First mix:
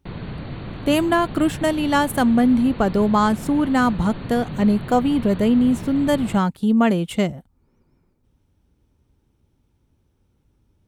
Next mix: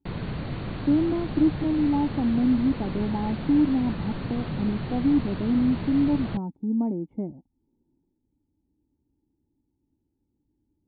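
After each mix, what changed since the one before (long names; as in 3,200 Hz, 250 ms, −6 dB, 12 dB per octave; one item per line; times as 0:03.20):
speech: add formant resonators in series u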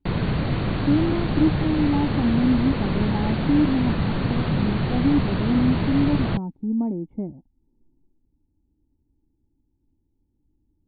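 speech: remove high-pass filter 140 Hz 6 dB per octave
background +8.5 dB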